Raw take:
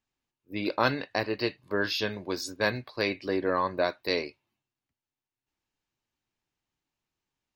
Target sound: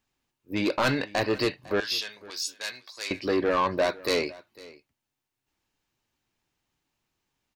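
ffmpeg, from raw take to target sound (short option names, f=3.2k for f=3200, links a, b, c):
-filter_complex "[0:a]asoftclip=type=tanh:threshold=-25dB,asettb=1/sr,asplit=3[a][b][c];[a]atrim=end=1.804[d];[b]atrim=start=1.8:end=3.11,asetpts=PTS-STARTPTS,afade=t=in:d=0.004:c=qsin,afade=t=out:st=1.306:d=0.004:c=qsin,bandpass=f=7.5k:t=q:w=0.6:csg=0[e];[c]atrim=start=3.106[f];[d][e]acrossfade=d=0.004:c1=hsin:c2=qsin[g];[g][f]acrossfade=d=0.004:c1=qsin:c2=hsin,aecho=1:1:502:0.0891,volume=7dB"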